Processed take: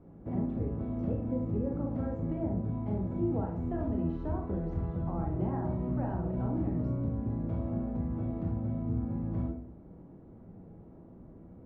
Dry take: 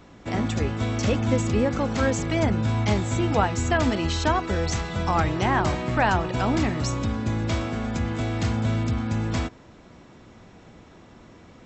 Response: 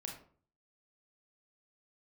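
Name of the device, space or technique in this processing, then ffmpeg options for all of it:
television next door: -filter_complex "[0:a]acompressor=threshold=-27dB:ratio=3,lowpass=530[a];[1:a]atrim=start_sample=2205[b];[a][b]afir=irnorm=-1:irlink=0"

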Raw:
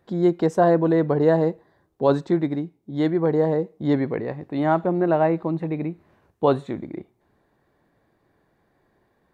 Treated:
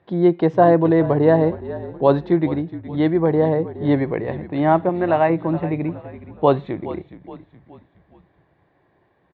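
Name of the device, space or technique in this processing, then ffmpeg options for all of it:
frequency-shifting delay pedal into a guitar cabinet: -filter_complex "[0:a]asettb=1/sr,asplit=3[a][b][c];[a]atrim=end=4.894[d];[b]atrim=start=4.89:end=5.3,asetpts=PTS-STARTPTS,afade=t=in:d=0.004:c=qsin,afade=t=out:st=0.406:d=0.004:c=qsin,tiltshelf=f=890:g=-5.5[e];[c]atrim=start=5.296[f];[d][e]acrossfade=d=0.004:c1=hsin:c2=qsin[g];[g][f]acrossfade=d=0.004:c1=qsin:c2=hsin,asplit=5[h][i][j][k][l];[i]adelay=419,afreqshift=-53,volume=-14.5dB[m];[j]adelay=838,afreqshift=-106,volume=-21.6dB[n];[k]adelay=1257,afreqshift=-159,volume=-28.8dB[o];[l]adelay=1676,afreqshift=-212,volume=-35.9dB[p];[h][m][n][o][p]amix=inputs=5:normalize=0,highpass=75,equalizer=f=230:t=q:w=4:g=-8,equalizer=f=450:t=q:w=4:g=-3,equalizer=f=1.4k:t=q:w=4:g=-5,lowpass=f=3.5k:w=0.5412,lowpass=f=3.5k:w=1.3066,volume=5dB"

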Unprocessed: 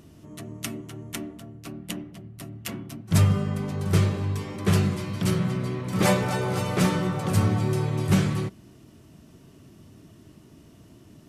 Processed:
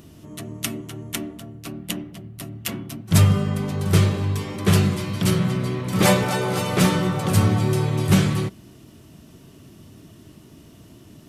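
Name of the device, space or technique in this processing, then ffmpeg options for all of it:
presence and air boost: -filter_complex "[0:a]asettb=1/sr,asplit=3[a][b][c];[a]atrim=end=6.244[d];[b]atrim=start=6.24:end=6.73,asetpts=PTS-STARTPTS,afade=t=in:d=0.004:c=qsin,afade=t=out:st=0.486:d=0.004:c=qsin,highpass=130[e];[c]atrim=start=6.726[f];[d][e]acrossfade=d=0.004:c1=hsin:c2=qsin[g];[g][f]acrossfade=d=0.004:c1=qsin:c2=hsin,equalizer=f=3.4k:t=o:w=0.77:g=3,highshelf=f=11k:g=7,volume=4dB"

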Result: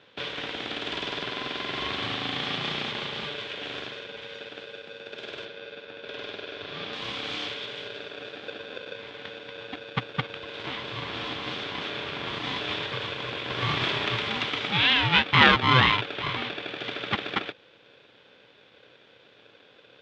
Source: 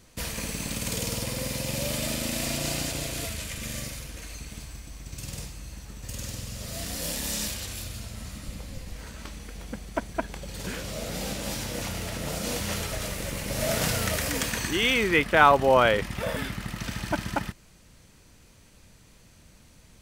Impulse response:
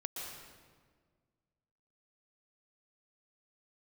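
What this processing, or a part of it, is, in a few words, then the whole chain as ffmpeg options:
ring modulator pedal into a guitar cabinet: -filter_complex "[0:a]aeval=exprs='val(0)*sgn(sin(2*PI*510*n/s))':c=same,highpass=110,equalizer=f=120:t=q:w=4:g=9,equalizer=f=360:t=q:w=4:g=-4,equalizer=f=660:t=q:w=4:g=-9,equalizer=f=2.3k:t=q:w=4:g=3,equalizer=f=3.4k:t=q:w=4:g=10,lowpass=f=3.7k:w=0.5412,lowpass=f=3.7k:w=1.3066,asettb=1/sr,asplit=3[a][b][c];[a]atrim=end=5.454[d];[b]atrim=start=5.45:end=6.93,asetpts=PTS-STARTPTS,afade=t=in:d=0.004:c=qsin,afade=t=out:st=1.476:d=0.004:c=qsin,lowpass=5.1k[e];[c]atrim=start=6.926[f];[d][e]acrossfade=d=0.004:c1=hsin:c2=qsin[g];[g][f]acrossfade=d=0.004:c1=qsin:c2=hsin"

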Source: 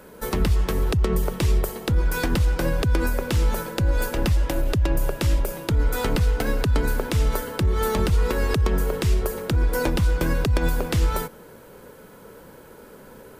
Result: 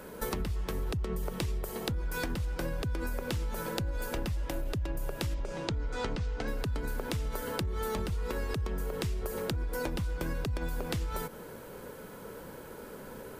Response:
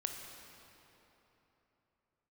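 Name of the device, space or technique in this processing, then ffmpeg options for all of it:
serial compression, peaks first: -filter_complex "[0:a]asettb=1/sr,asplit=3[a][b][c];[a]atrim=end=5.344[d];[b]atrim=start=5.34:end=6.48,asetpts=PTS-STARTPTS,afade=t=in:d=0.004:c=qsin,afade=t=out:st=1.136:d=0.004:c=qsin,lowpass=f=6.9k:w=0.5412,lowpass=f=6.9k:w=1.3066[e];[c]atrim=start=6.476[f];[d][e]acrossfade=d=0.004:c1=hsin:c2=qsin[g];[g][f]acrossfade=d=0.004:c1=qsin:c2=hsin,acompressor=threshold=-26dB:ratio=6,acompressor=threshold=-33dB:ratio=2"

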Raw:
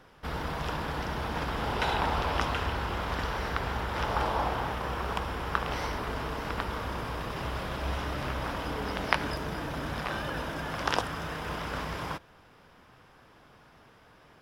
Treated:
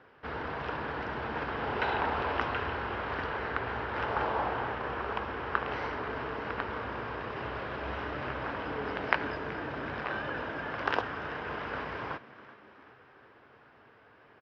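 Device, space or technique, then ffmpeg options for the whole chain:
frequency-shifting delay pedal into a guitar cabinet: -filter_complex "[0:a]asplit=6[a][b][c][d][e][f];[b]adelay=377,afreqshift=75,volume=-18dB[g];[c]adelay=754,afreqshift=150,volume=-23dB[h];[d]adelay=1131,afreqshift=225,volume=-28.1dB[i];[e]adelay=1508,afreqshift=300,volume=-33.1dB[j];[f]adelay=1885,afreqshift=375,volume=-38.1dB[k];[a][g][h][i][j][k]amix=inputs=6:normalize=0,highpass=97,equalizer=f=170:t=q:w=4:g=-9,equalizer=f=420:t=q:w=4:g=4,equalizer=f=1.6k:t=q:w=4:g=4,equalizer=f=3.5k:t=q:w=4:g=-6,lowpass=f=3.8k:w=0.5412,lowpass=f=3.8k:w=1.3066,asettb=1/sr,asplit=3[l][m][n];[l]atrim=end=3.264[o];[m]atrim=start=3.26:end=3.68,asetpts=PTS-STARTPTS,afade=t=in:d=0.004:c=qsin,afade=t=out:st=0.416:d=0.004:c=qsin,lowpass=5.4k[p];[n]atrim=start=3.676[q];[o][p]acrossfade=d=0.004:c1=hsin:c2=qsin[r];[r][q]acrossfade=d=0.004:c1=qsin:c2=hsin,volume=-2dB"

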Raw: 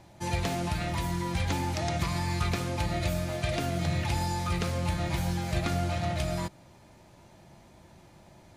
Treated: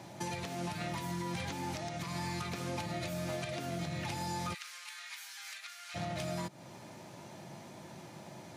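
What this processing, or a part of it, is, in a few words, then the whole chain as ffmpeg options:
broadcast voice chain: -filter_complex "[0:a]highpass=f=120:w=0.5412,highpass=f=120:w=1.3066,deesser=0.6,acompressor=threshold=-38dB:ratio=4,equalizer=f=5.8k:t=o:w=0.28:g=2.5,alimiter=level_in=10dB:limit=-24dB:level=0:latency=1:release=341,volume=-10dB,asplit=3[a][b][c];[a]afade=t=out:st=4.53:d=0.02[d];[b]highpass=f=1.4k:w=0.5412,highpass=f=1.4k:w=1.3066,afade=t=in:st=4.53:d=0.02,afade=t=out:st=5.94:d=0.02[e];[c]afade=t=in:st=5.94:d=0.02[f];[d][e][f]amix=inputs=3:normalize=0,volume=6dB"

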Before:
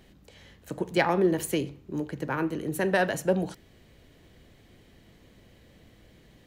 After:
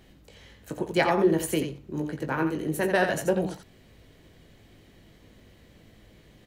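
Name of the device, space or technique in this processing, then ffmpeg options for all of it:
slapback doubling: -filter_complex "[0:a]asplit=3[a][b][c];[b]adelay=19,volume=-7dB[d];[c]adelay=86,volume=-7dB[e];[a][d][e]amix=inputs=3:normalize=0"

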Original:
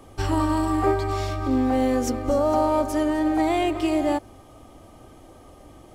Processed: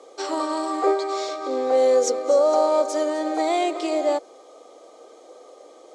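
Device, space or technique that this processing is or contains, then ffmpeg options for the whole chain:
phone speaker on a table: -filter_complex "[0:a]asettb=1/sr,asplit=3[a][b][c];[a]atrim=end=1.774[d];[b]atrim=start=1.77:end=3.81,asetpts=PTS-STARTPTS,afade=t=in:d=0.004:c=qsin,afade=t=out:st=2.036:d=0.004:c=qsin,highshelf=f=6.9k:g=5[e];[c]atrim=start=3.806[f];[d][e]acrossfade=d=0.004:c1=hsin:c2=qsin[g];[g][f]acrossfade=d=0.004:c1=qsin:c2=hsin,highpass=f=400:w=0.5412,highpass=f=400:w=1.3066,equalizer=f=480:t=q:w=4:g=10,equalizer=f=910:t=q:w=4:g=-5,equalizer=f=1.7k:t=q:w=4:g=-7,equalizer=f=2.8k:t=q:w=4:g=-8,equalizer=f=4k:t=q:w=4:g=5,equalizer=f=6.7k:t=q:w=4:g=4,lowpass=f=8.1k:w=0.5412,lowpass=f=8.1k:w=1.3066,volume=2.5dB"

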